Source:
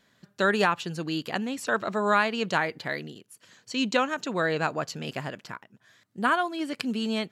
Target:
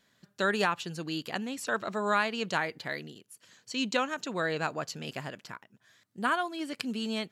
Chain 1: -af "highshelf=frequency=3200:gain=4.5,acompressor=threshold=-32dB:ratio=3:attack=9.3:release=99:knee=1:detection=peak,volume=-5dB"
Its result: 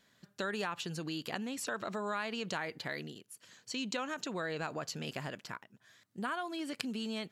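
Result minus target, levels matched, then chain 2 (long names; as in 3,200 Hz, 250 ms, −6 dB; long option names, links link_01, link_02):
downward compressor: peak gain reduction +11 dB
-af "highshelf=frequency=3200:gain=4.5,volume=-5dB"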